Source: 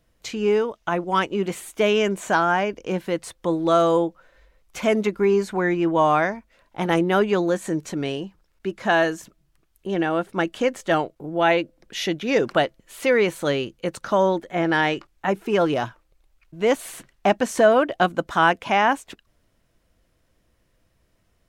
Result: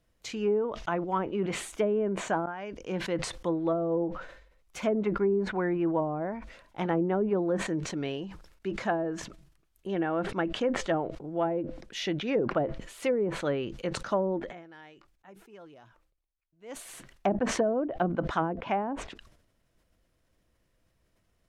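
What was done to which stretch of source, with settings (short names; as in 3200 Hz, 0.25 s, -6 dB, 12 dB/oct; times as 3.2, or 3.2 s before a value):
2.46–3.03 fade in, from -23 dB
14.36–16.92 dip -23.5 dB, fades 0.30 s quadratic
whole clip: treble ducked by the level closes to 450 Hz, closed at -14 dBFS; sustainer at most 73 dB/s; gain -6.5 dB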